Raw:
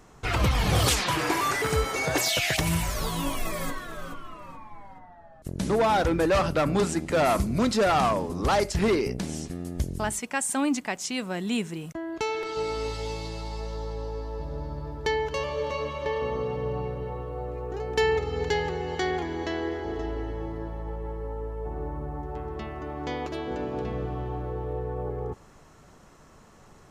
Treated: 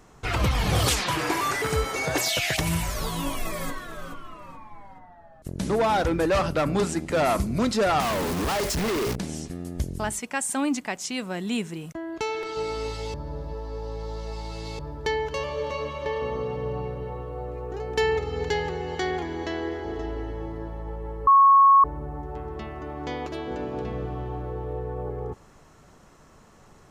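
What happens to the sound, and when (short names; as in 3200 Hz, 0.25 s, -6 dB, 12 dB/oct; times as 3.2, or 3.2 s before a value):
8–9.16 companded quantiser 2-bit
13.14–14.79 reverse
21.27–21.84 bleep 1100 Hz -11.5 dBFS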